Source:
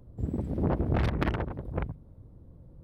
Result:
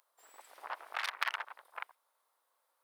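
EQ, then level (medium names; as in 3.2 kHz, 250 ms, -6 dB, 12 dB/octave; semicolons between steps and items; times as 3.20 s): inverse Chebyshev high-pass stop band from 170 Hz, stop band 80 dB; treble shelf 4.2 kHz +9.5 dB; +1.0 dB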